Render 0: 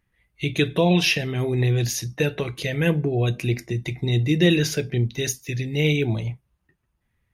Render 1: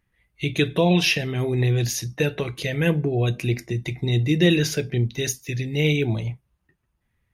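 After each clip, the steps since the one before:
no processing that can be heard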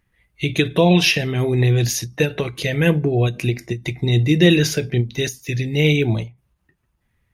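every ending faded ahead of time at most 220 dB per second
level +4.5 dB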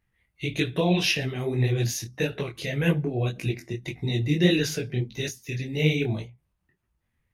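micro pitch shift up and down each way 60 cents
level −4 dB

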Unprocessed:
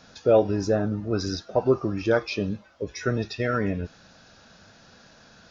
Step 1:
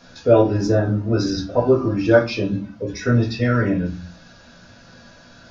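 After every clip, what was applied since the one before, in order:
convolution reverb RT60 0.35 s, pre-delay 4 ms, DRR −3 dB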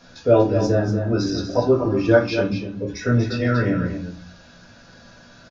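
single-tap delay 239 ms −8 dB
level −1.5 dB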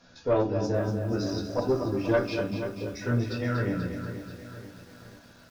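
tube saturation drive 8 dB, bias 0.45
feedback echo at a low word length 484 ms, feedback 55%, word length 7 bits, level −10.5 dB
level −6.5 dB

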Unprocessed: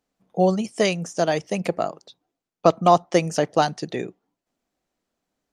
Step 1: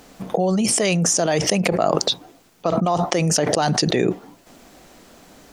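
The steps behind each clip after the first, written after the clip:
envelope flattener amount 100%
level −7.5 dB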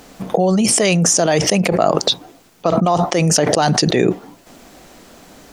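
boost into a limiter +5.5 dB
level −1 dB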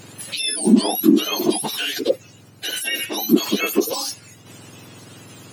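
frequency axis turned over on the octave scale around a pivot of 1,400 Hz
one half of a high-frequency compander encoder only
level −4.5 dB

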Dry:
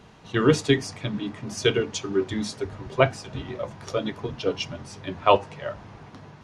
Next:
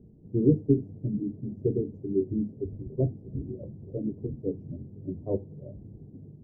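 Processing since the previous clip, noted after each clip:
inverse Chebyshev low-pass filter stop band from 1,300 Hz, stop band 60 dB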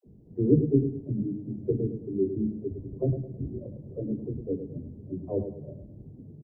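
all-pass dispersion lows, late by 64 ms, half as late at 410 Hz
on a send: repeating echo 106 ms, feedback 38%, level −9 dB

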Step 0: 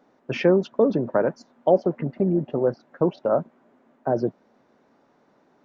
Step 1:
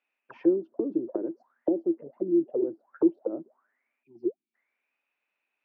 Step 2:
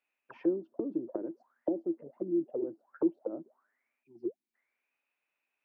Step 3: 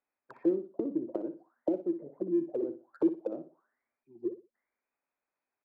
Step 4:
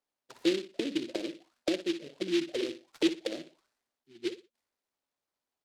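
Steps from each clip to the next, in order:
time-frequency box erased 0:04.03–0:04.54, 390–2,200 Hz; envelope filter 330–2,600 Hz, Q 16, down, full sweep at −19.5 dBFS; level +6 dB
dynamic equaliser 400 Hz, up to −5 dB, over −35 dBFS, Q 1.9; level −3 dB
adaptive Wiener filter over 15 samples; on a send: repeating echo 60 ms, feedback 25%, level −11 dB; on the sum: level +1.5 dB
short delay modulated by noise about 3,000 Hz, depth 0.13 ms

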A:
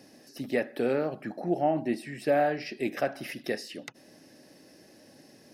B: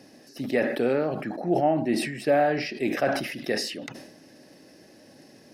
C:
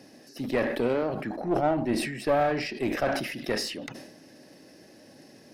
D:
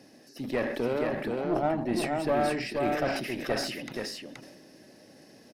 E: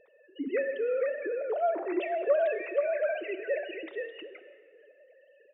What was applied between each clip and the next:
high-shelf EQ 7,700 Hz −5 dB; level that may fall only so fast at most 58 dB per second; level +3 dB
one-sided soft clipper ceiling −23.5 dBFS
single-tap delay 476 ms −3.5 dB; level −3 dB
three sine waves on the formant tracks; dense smooth reverb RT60 2 s, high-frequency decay 0.8×, DRR 11.5 dB; level −1 dB

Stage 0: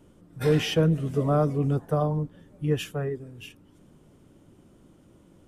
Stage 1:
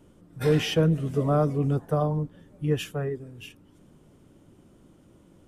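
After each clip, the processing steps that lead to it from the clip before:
no processing that can be heard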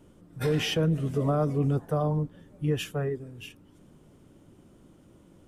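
brickwall limiter −17.5 dBFS, peak gain reduction 5.5 dB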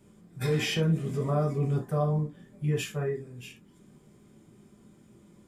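convolution reverb, pre-delay 3 ms, DRR −0.5 dB
level −2.5 dB

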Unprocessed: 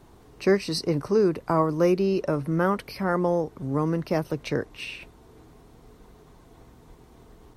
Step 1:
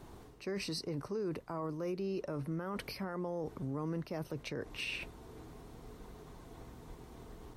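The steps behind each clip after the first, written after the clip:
reversed playback
downward compressor 10 to 1, threshold −31 dBFS, peak gain reduction 15.5 dB
reversed playback
brickwall limiter −30 dBFS, peak gain reduction 8 dB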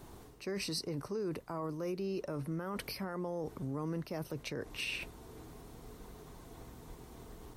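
high-shelf EQ 6,700 Hz +8 dB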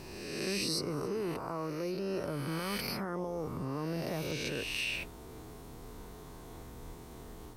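peak hold with a rise ahead of every peak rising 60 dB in 1.60 s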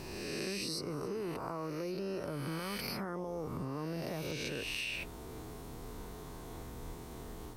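downward compressor, threshold −37 dBFS, peak gain reduction 7.5 dB
level +2 dB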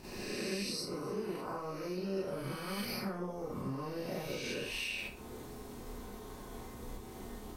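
transient designer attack +4 dB, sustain −8 dB
four-comb reverb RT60 0.34 s, combs from 30 ms, DRR −8 dB
level −8.5 dB

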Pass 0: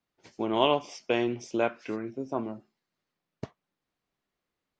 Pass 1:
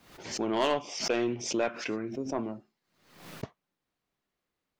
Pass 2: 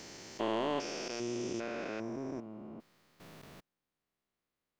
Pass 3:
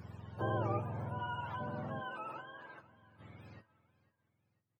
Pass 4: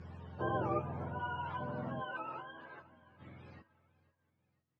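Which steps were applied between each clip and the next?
soft clipping −19.5 dBFS, distortion −11 dB; background raised ahead of every attack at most 81 dB per second
spectrum averaged block by block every 400 ms; level −3 dB
frequency axis turned over on the octave scale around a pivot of 590 Hz; tuned comb filter 110 Hz, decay 0.24 s, harmonics all, mix 50%; repeating echo 498 ms, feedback 45%, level −20 dB; level +3 dB
multi-voice chorus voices 6, 0.71 Hz, delay 14 ms, depth 2.5 ms; high-frequency loss of the air 100 metres; level +4.5 dB

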